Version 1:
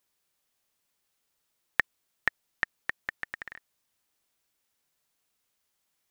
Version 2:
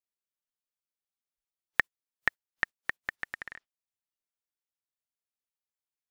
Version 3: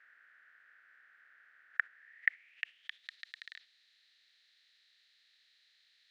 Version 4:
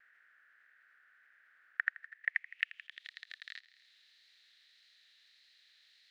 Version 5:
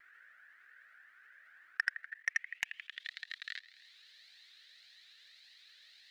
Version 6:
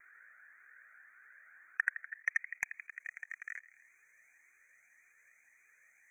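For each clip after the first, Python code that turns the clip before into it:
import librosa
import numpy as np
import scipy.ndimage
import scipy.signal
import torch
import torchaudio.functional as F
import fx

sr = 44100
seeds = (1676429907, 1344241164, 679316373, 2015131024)

y1 = fx.noise_reduce_blind(x, sr, reduce_db=21)
y2 = fx.bin_compress(y1, sr, power=0.4)
y2 = fx.filter_sweep_bandpass(y2, sr, from_hz=1500.0, to_hz=4000.0, start_s=1.89, end_s=3.11, q=6.5)
y2 = fx.peak_eq(y2, sr, hz=1000.0, db=-13.0, octaves=0.64)
y2 = F.gain(torch.from_numpy(y2), 1.5).numpy()
y3 = fx.echo_thinned(y2, sr, ms=83, feedback_pct=48, hz=1000.0, wet_db=-5)
y3 = fx.level_steps(y3, sr, step_db=18)
y3 = fx.vibrato(y3, sr, rate_hz=1.7, depth_cents=33.0)
y3 = F.gain(torch.from_numpy(y3), 5.5).numpy()
y4 = fx.level_steps(y3, sr, step_db=17)
y4 = 10.0 ** (-24.0 / 20.0) * np.tanh(y4 / 10.0 ** (-24.0 / 20.0))
y4 = fx.comb_cascade(y4, sr, direction='rising', hz=1.8)
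y4 = F.gain(torch.from_numpy(y4), 11.5).numpy()
y5 = fx.brickwall_bandstop(y4, sr, low_hz=2500.0, high_hz=5900.0)
y5 = F.gain(torch.from_numpy(y5), 1.0).numpy()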